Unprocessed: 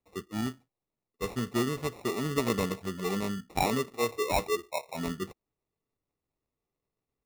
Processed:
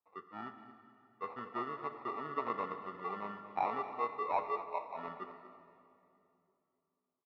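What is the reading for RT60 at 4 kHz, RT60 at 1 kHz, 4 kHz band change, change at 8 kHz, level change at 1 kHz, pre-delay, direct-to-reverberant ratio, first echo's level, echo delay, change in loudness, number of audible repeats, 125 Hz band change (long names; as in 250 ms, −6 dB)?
2.3 s, 2.5 s, −21.0 dB, below −35 dB, −1.0 dB, 31 ms, 7.5 dB, −14.5 dB, 232 ms, −7.5 dB, 1, −21.5 dB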